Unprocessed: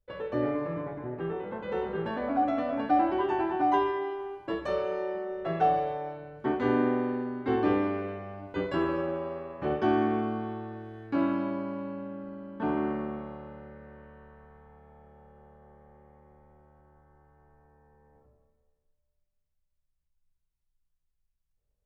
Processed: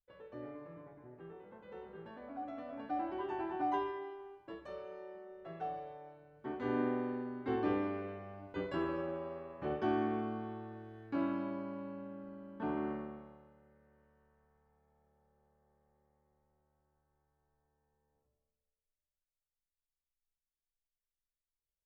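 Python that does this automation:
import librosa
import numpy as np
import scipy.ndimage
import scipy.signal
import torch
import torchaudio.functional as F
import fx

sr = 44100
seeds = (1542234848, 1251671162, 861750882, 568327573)

y = fx.gain(x, sr, db=fx.line((2.29, -18.0), (3.63, -9.0), (4.69, -16.5), (6.3, -16.5), (6.8, -8.0), (12.93, -8.0), (13.54, -19.5)))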